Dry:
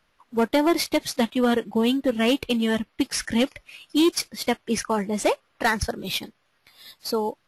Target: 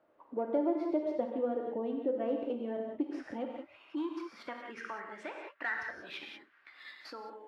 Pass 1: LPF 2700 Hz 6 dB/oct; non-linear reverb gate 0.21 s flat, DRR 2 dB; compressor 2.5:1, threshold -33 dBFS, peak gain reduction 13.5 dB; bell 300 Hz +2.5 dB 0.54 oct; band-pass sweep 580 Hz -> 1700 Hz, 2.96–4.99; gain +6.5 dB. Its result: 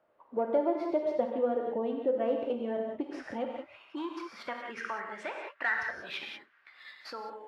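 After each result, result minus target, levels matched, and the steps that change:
compressor: peak gain reduction -5.5 dB; 250 Hz band -4.0 dB
change: compressor 2.5:1, threshold -42 dBFS, peak gain reduction 19 dB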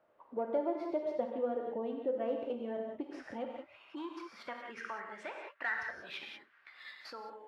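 250 Hz band -4.0 dB
change: bell 300 Hz +11 dB 0.54 oct

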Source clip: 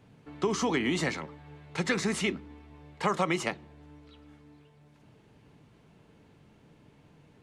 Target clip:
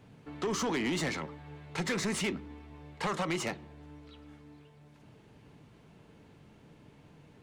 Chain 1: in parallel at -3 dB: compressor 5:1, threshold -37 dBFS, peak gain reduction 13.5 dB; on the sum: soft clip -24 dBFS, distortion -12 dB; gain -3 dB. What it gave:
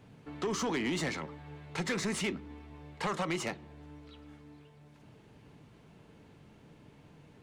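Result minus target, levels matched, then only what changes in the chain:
compressor: peak gain reduction +8 dB
change: compressor 5:1, threshold -27 dBFS, peak gain reduction 5.5 dB

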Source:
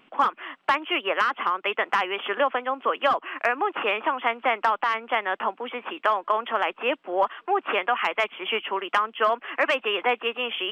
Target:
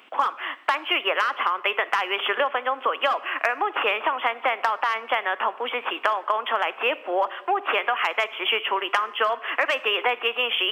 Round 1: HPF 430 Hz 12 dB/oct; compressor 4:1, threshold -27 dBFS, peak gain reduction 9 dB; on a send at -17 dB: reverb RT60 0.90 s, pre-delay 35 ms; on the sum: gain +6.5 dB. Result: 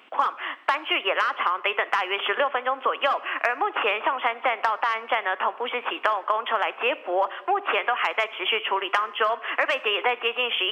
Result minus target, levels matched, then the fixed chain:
8000 Hz band -3.0 dB
HPF 430 Hz 12 dB/oct; compressor 4:1, threshold -27 dBFS, peak gain reduction 9 dB; high shelf 5300 Hz +6 dB; on a send at -17 dB: reverb RT60 0.90 s, pre-delay 35 ms; on the sum: gain +6.5 dB

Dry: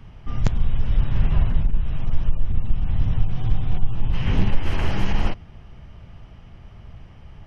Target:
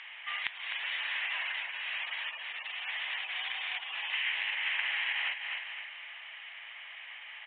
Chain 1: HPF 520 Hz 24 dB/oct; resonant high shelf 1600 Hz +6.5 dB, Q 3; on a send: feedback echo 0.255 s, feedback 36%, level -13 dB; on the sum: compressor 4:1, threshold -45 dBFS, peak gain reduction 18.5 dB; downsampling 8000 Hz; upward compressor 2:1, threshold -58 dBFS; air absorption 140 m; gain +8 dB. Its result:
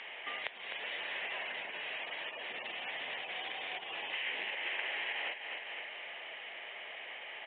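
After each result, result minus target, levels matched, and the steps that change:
500 Hz band +16.5 dB; compressor: peak gain reduction +5.5 dB
change: HPF 1000 Hz 24 dB/oct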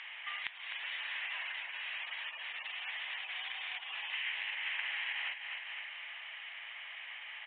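compressor: peak gain reduction +5 dB
change: compressor 4:1, threshold -38 dBFS, peak gain reduction 13 dB

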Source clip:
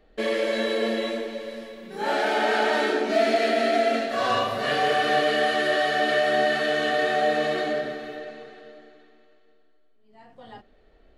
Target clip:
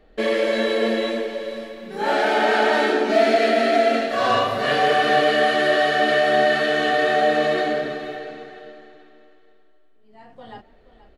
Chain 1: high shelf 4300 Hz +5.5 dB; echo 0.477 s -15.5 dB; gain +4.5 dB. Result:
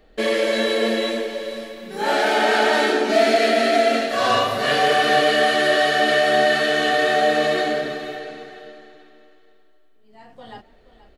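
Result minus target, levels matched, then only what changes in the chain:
8000 Hz band +6.5 dB
change: high shelf 4300 Hz -4 dB

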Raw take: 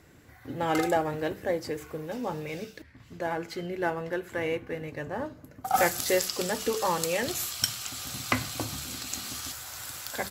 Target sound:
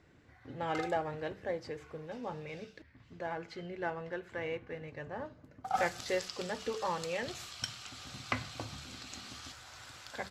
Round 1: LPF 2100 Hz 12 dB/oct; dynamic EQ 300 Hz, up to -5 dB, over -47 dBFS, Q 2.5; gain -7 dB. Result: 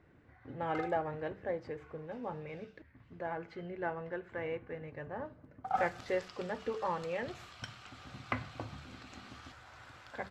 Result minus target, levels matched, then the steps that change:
4000 Hz band -8.5 dB
change: LPF 4800 Hz 12 dB/oct

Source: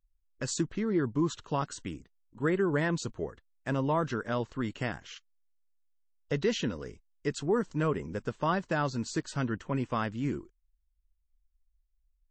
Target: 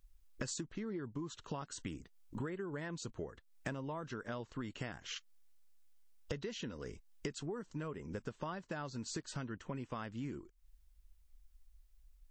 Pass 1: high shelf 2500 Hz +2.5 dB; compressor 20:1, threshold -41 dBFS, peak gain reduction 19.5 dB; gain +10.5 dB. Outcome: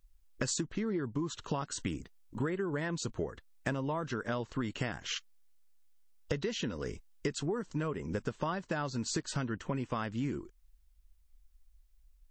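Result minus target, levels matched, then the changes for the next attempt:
compressor: peak gain reduction -7.5 dB
change: compressor 20:1, threshold -49 dBFS, peak gain reduction 27 dB

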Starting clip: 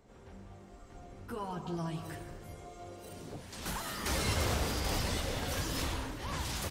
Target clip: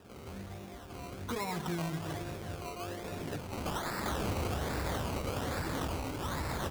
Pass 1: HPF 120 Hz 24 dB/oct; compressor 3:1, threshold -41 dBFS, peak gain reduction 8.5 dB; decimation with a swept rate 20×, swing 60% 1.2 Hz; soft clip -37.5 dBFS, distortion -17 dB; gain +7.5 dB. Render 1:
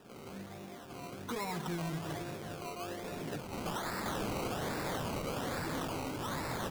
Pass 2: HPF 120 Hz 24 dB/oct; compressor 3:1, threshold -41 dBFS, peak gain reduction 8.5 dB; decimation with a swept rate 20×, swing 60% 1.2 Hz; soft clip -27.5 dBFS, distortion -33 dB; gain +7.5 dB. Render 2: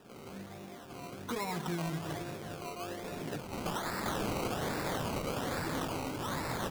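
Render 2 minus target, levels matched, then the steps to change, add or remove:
125 Hz band -3.0 dB
change: HPF 58 Hz 24 dB/oct

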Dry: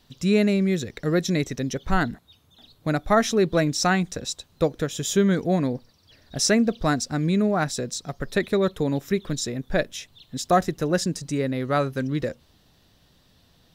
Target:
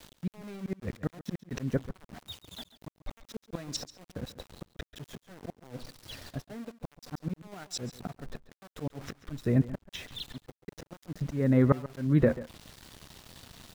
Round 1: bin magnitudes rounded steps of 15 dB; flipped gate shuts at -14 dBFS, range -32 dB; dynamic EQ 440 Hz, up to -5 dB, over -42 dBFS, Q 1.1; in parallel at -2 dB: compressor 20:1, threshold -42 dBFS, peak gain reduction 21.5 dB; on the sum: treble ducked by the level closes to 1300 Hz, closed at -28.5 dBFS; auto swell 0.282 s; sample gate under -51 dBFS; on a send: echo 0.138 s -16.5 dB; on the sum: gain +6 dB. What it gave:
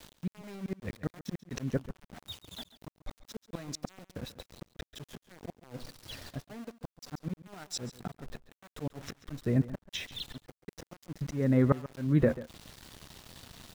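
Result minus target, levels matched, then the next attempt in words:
compressor: peak gain reduction +10.5 dB
bin magnitudes rounded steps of 15 dB; flipped gate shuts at -14 dBFS, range -32 dB; dynamic EQ 440 Hz, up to -5 dB, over -42 dBFS, Q 1.1; in parallel at -2 dB: compressor 20:1, threshold -31 dBFS, peak gain reduction 11 dB; on the sum: treble ducked by the level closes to 1300 Hz, closed at -28.5 dBFS; auto swell 0.282 s; sample gate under -51 dBFS; on a send: echo 0.138 s -16.5 dB; on the sum: gain +6 dB

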